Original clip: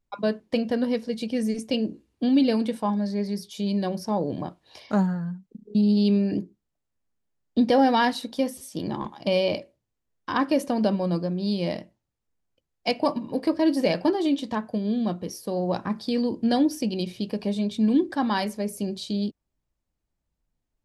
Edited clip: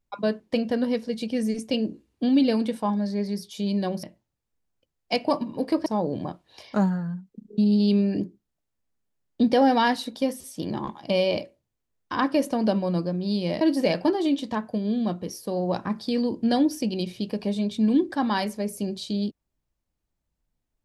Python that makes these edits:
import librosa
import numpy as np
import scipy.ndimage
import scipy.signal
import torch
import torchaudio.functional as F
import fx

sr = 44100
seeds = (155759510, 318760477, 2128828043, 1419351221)

y = fx.edit(x, sr, fx.move(start_s=11.78, length_s=1.83, to_s=4.03), tone=tone)